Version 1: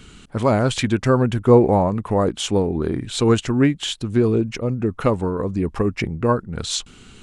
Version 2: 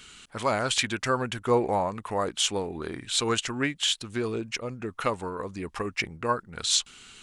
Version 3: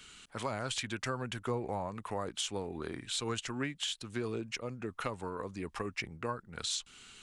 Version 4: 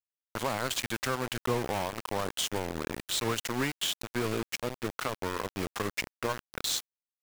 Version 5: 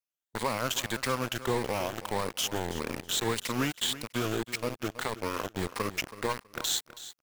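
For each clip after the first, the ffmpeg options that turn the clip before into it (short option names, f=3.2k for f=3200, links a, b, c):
-af "tiltshelf=f=660:g=-9,volume=-7.5dB"
-filter_complex "[0:a]acrossover=split=180[a][b];[b]acompressor=threshold=-28dB:ratio=6[c];[a][c]amix=inputs=2:normalize=0,volume=-5dB"
-filter_complex "[0:a]asplit=2[a][b];[b]alimiter=level_in=5dB:limit=-24dB:level=0:latency=1:release=69,volume=-5dB,volume=3dB[c];[a][c]amix=inputs=2:normalize=0,aeval=exprs='val(0)*gte(abs(val(0)),0.0335)':c=same"
-af "afftfilt=real='re*pow(10,7/40*sin(2*PI*(0.92*log(max(b,1)*sr/1024/100)/log(2)-(1.7)*(pts-256)/sr)))':imag='im*pow(10,7/40*sin(2*PI*(0.92*log(max(b,1)*sr/1024/100)/log(2)-(1.7)*(pts-256)/sr)))':win_size=1024:overlap=0.75,aecho=1:1:325|650:0.188|0.0396"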